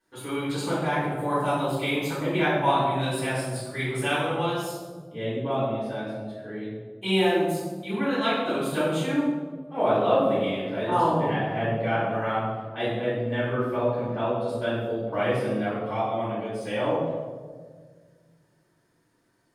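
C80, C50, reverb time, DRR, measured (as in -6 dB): 2.0 dB, -1.0 dB, 1.7 s, -14.0 dB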